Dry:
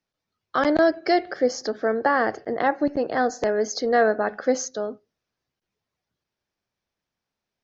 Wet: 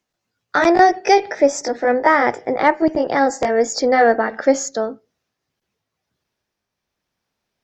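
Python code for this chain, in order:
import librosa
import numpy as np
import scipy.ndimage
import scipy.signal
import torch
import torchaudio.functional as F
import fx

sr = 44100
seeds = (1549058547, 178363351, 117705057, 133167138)

y = fx.pitch_glide(x, sr, semitones=2.5, runs='ending unshifted')
y = fx.cheby_harmonics(y, sr, harmonics=(8,), levels_db=(-43,), full_scale_db=-8.5)
y = F.gain(torch.from_numpy(y), 7.5).numpy()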